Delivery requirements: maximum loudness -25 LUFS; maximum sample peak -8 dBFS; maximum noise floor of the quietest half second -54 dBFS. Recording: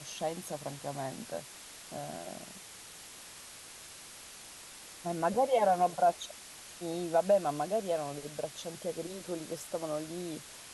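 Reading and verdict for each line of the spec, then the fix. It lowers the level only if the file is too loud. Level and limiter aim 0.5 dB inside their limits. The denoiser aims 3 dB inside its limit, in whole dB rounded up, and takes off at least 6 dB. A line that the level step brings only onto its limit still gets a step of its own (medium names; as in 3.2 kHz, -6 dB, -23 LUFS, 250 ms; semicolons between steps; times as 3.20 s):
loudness -34.0 LUFS: pass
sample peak -17.0 dBFS: pass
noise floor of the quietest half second -50 dBFS: fail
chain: noise reduction 7 dB, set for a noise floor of -50 dBFS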